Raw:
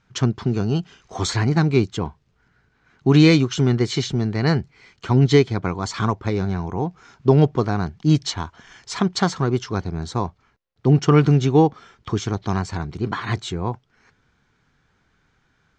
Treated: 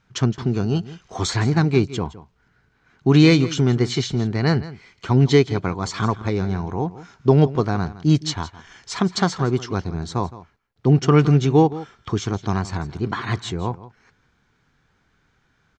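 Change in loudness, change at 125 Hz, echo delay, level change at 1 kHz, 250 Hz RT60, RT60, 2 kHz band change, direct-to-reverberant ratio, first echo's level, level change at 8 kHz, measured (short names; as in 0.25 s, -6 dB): 0.0 dB, 0.0 dB, 0.165 s, 0.0 dB, none, none, 0.0 dB, none, -16.5 dB, 0.0 dB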